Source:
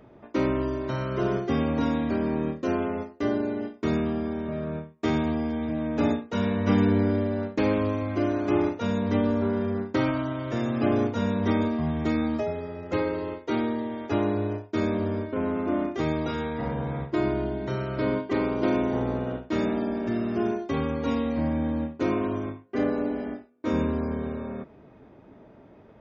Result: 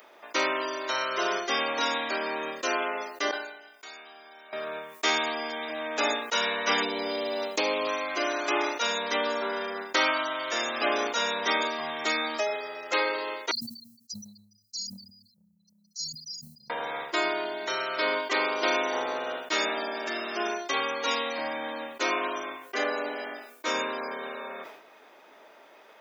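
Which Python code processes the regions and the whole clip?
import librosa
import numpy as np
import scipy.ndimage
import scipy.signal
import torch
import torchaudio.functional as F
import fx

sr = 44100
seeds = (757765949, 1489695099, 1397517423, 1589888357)

y = fx.chain(x, sr, fx.low_shelf(hz=390.0, db=-11.5),
    fx.comb_fb(f0_hz=760.0, decay_s=0.16, harmonics='all', damping=0.0, mix_pct=90),
    fx.env_flatten(amount_pct=50), at=(3.31, 4.53))
y = fx.chain(y, sr, fx.peak_eq(hz=1600.0, db=-11.5, octaves=0.81),
    fx.band_squash(depth_pct=70), at=(6.82, 7.87))
y = fx.chain(y, sr, fx.brickwall_bandstop(low_hz=210.0, high_hz=4000.0),
    fx.band_widen(depth_pct=70), at=(13.51, 16.7))
y = scipy.signal.sosfilt(scipy.signal.butter(2, 520.0, 'highpass', fs=sr, output='sos'), y)
y = fx.tilt_eq(y, sr, slope=4.5)
y = fx.sustainer(y, sr, db_per_s=70.0)
y = y * 10.0 ** (5.5 / 20.0)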